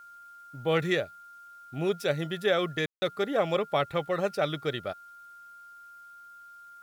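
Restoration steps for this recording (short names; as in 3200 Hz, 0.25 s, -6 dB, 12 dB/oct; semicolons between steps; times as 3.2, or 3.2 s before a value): notch 1400 Hz, Q 30; room tone fill 2.86–3.02; expander -42 dBFS, range -21 dB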